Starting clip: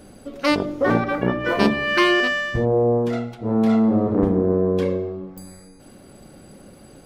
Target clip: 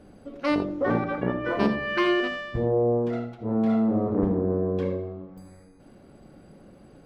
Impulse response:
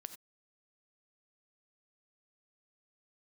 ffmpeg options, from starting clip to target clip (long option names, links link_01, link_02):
-filter_complex "[0:a]lowpass=frequency=2000:poles=1[link_01];[1:a]atrim=start_sample=2205,atrim=end_sample=3969[link_02];[link_01][link_02]afir=irnorm=-1:irlink=0"